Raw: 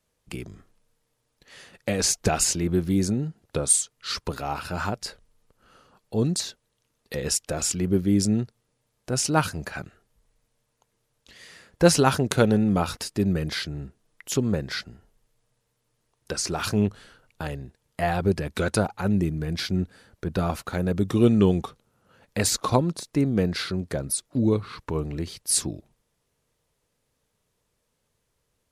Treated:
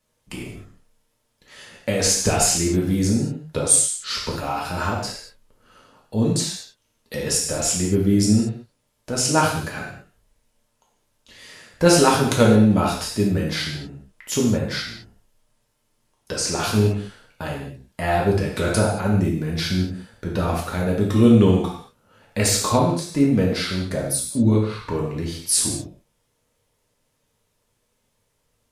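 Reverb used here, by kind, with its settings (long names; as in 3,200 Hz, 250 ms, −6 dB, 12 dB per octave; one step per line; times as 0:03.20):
reverb whose tail is shaped and stops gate 250 ms falling, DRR −3 dB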